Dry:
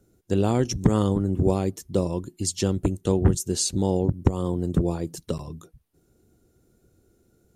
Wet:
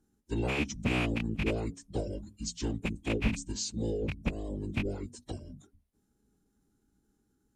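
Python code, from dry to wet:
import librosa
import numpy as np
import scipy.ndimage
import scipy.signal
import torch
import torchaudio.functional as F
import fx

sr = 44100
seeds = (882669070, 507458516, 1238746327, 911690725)

y = fx.rattle_buzz(x, sr, strikes_db=-23.0, level_db=-11.0)
y = fx.hum_notches(y, sr, base_hz=60, count=8)
y = fx.pitch_keep_formants(y, sr, semitones=-9.5)
y = y * librosa.db_to_amplitude(-8.5)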